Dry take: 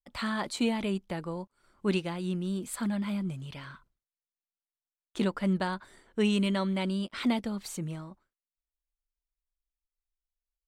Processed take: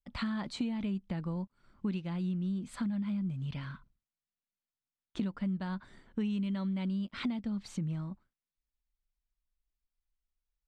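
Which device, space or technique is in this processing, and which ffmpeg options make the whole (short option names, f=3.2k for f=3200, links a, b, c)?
jukebox: -af "lowpass=5.1k,lowshelf=f=290:t=q:w=1.5:g=7.5,acompressor=threshold=-30dB:ratio=6,volume=-2dB"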